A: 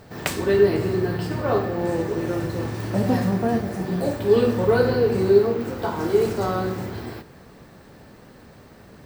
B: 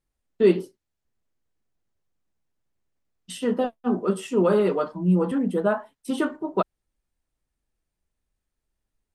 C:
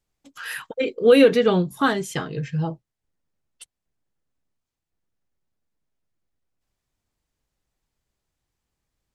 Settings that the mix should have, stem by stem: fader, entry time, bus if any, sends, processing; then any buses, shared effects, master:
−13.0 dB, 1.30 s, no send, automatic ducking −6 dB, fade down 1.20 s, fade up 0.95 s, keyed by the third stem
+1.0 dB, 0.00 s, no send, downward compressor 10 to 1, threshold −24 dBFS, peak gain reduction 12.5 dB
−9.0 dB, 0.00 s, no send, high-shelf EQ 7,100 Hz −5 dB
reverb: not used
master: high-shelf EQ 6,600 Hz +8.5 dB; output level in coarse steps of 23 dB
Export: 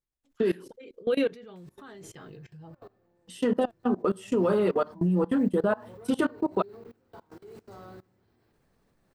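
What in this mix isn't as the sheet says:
stem A −13.0 dB → −20.5 dB
stem B +1.0 dB → +7.0 dB
master: missing high-shelf EQ 6,600 Hz +8.5 dB

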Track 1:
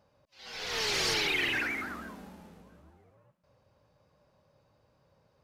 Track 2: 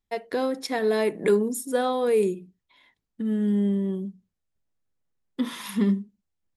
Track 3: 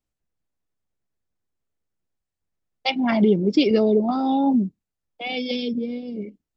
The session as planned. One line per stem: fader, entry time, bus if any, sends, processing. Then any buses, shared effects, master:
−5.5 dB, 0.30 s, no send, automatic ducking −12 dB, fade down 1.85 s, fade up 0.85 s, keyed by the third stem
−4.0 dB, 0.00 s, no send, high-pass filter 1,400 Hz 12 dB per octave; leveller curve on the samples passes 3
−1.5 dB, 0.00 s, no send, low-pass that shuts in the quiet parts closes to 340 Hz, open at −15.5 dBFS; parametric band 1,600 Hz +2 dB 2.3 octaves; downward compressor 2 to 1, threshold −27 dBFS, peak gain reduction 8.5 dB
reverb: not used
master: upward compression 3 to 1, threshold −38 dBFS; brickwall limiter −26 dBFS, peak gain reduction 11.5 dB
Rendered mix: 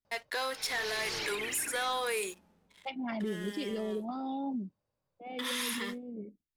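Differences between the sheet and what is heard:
stem 1: entry 0.30 s → 0.05 s
stem 3 −1.5 dB → −10.5 dB
master: missing upward compression 3 to 1, threshold −38 dBFS

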